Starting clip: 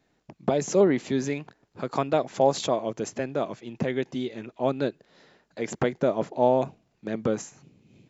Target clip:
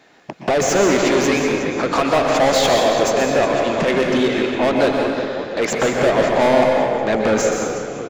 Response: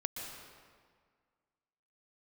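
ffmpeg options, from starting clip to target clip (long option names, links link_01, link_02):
-filter_complex "[0:a]asplit=6[link_01][link_02][link_03][link_04][link_05][link_06];[link_02]adelay=365,afreqshift=-43,volume=-17.5dB[link_07];[link_03]adelay=730,afreqshift=-86,volume=-23dB[link_08];[link_04]adelay=1095,afreqshift=-129,volume=-28.5dB[link_09];[link_05]adelay=1460,afreqshift=-172,volume=-34dB[link_10];[link_06]adelay=1825,afreqshift=-215,volume=-39.6dB[link_11];[link_01][link_07][link_08][link_09][link_10][link_11]amix=inputs=6:normalize=0,asplit=2[link_12][link_13];[link_13]highpass=frequency=720:poles=1,volume=30dB,asoftclip=type=tanh:threshold=-8dB[link_14];[link_12][link_14]amix=inputs=2:normalize=0,lowpass=frequency=3700:poles=1,volume=-6dB[link_15];[1:a]atrim=start_sample=2205[link_16];[link_15][link_16]afir=irnorm=-1:irlink=0"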